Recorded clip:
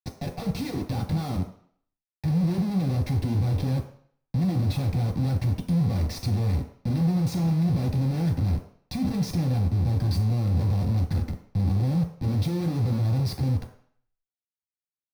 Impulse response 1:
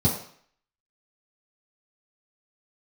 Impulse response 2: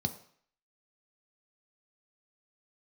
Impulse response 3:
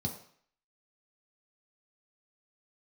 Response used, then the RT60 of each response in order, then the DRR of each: 3; 0.55, 0.55, 0.55 seconds; −9.5, 6.5, 0.0 decibels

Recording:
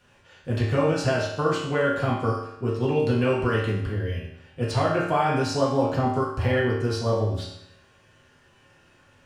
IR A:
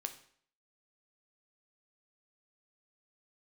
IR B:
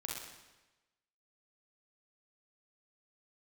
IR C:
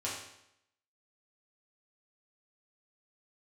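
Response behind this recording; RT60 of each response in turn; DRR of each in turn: C; 0.55, 1.1, 0.80 seconds; 6.5, −2.5, −7.0 decibels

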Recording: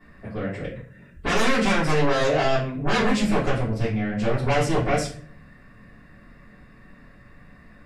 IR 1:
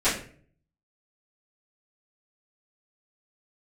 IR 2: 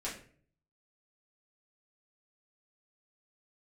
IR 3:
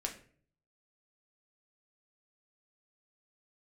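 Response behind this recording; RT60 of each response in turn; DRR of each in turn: 1; 0.50, 0.50, 0.50 seconds; −16.5, −7.5, 1.5 decibels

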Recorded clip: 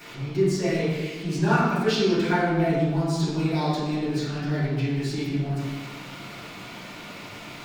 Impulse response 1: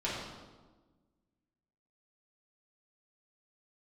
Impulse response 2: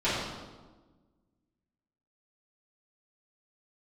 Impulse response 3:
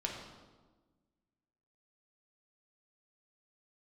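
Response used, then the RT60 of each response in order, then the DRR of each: 2; 1.3, 1.3, 1.3 seconds; −8.5, −14.0, −1.0 decibels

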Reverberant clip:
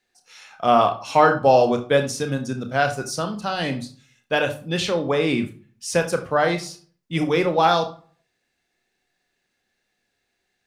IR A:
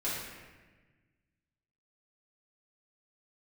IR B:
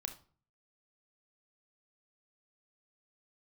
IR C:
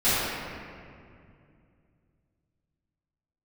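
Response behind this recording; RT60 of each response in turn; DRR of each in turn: B; 1.3 s, non-exponential decay, 2.4 s; −10.0, 6.0, −16.0 decibels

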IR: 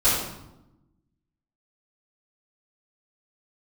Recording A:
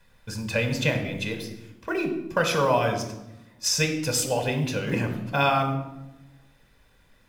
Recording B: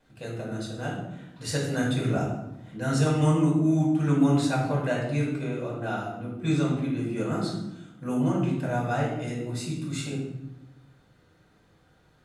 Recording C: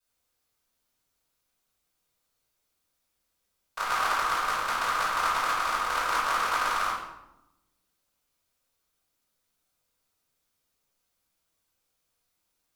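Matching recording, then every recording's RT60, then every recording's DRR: C; 0.95, 0.90, 0.90 seconds; 4.0, −4.5, −13.5 decibels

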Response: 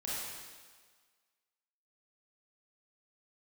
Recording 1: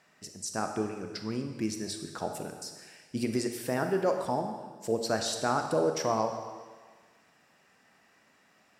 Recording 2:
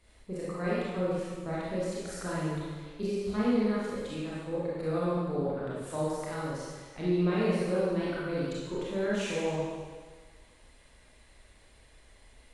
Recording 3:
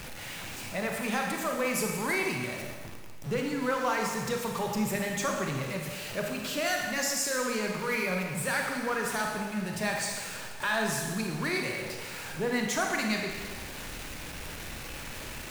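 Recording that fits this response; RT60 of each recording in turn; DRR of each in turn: 2; 1.6, 1.6, 1.6 seconds; 5.0, −8.0, 1.0 decibels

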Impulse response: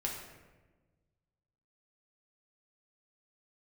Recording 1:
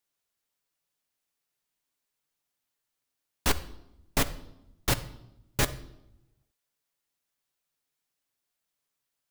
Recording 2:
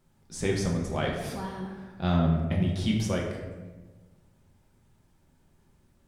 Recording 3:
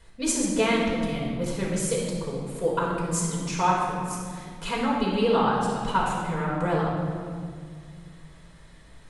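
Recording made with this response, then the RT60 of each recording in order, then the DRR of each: 2; 0.85, 1.3, 2.1 seconds; 9.5, −1.5, −5.0 decibels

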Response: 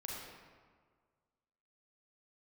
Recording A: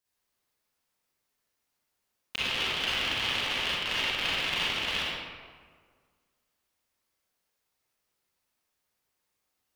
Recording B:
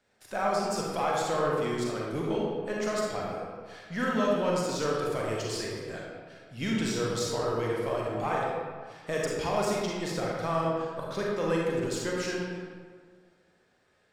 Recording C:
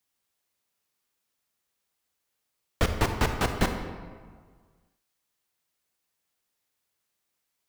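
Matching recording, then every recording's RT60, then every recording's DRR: B; 1.7, 1.7, 1.7 seconds; −9.5, −4.0, 5.5 decibels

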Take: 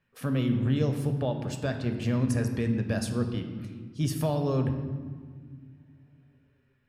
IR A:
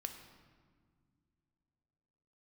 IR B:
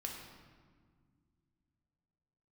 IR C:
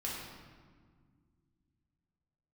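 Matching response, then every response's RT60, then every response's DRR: A; non-exponential decay, 1.9 s, 1.8 s; 5.5, −0.5, −5.5 decibels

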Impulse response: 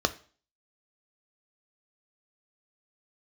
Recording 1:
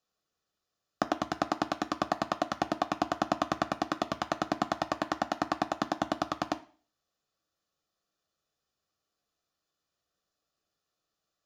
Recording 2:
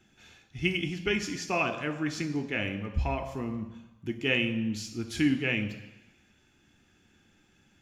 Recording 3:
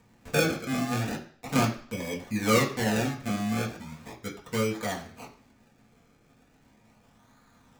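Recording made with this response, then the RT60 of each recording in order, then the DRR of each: 1; 0.40, 1.0, 0.55 seconds; 9.0, 6.0, −3.5 decibels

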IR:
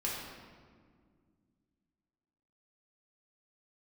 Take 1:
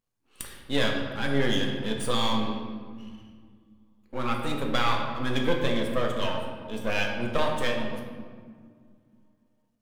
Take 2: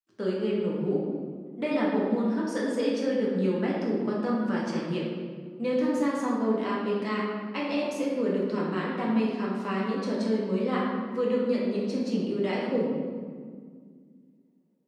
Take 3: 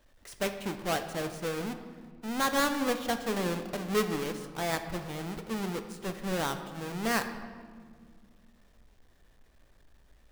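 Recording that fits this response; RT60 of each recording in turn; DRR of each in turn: 2; 1.9, 1.9, 2.0 seconds; 0.5, −5.5, 7.0 decibels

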